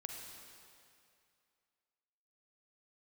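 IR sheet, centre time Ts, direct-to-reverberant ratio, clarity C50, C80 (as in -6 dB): 87 ms, 1.5 dB, 2.0 dB, 3.5 dB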